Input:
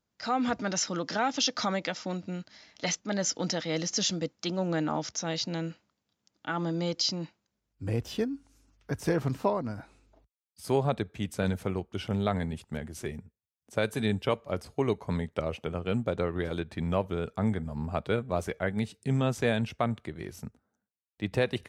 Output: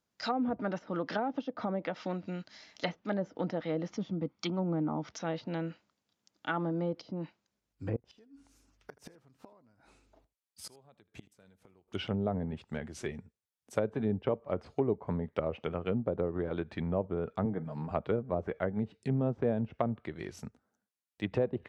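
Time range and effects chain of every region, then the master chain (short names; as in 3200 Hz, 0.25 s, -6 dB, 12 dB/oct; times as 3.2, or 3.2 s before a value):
3.91–5.08 notch 1700 Hz, Q 27 + comb 0.9 ms, depth 43%
7.96–11.88 compressor 1.5:1, threshold -37 dBFS + flipped gate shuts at -30 dBFS, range -26 dB + echo 79 ms -20.5 dB
17.45–17.91 HPF 130 Hz + comb 6.4 ms, depth 47%
whole clip: dynamic EQ 3300 Hz, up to +4 dB, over -47 dBFS, Q 1.7; treble ducked by the level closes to 610 Hz, closed at -25 dBFS; low shelf 150 Hz -7 dB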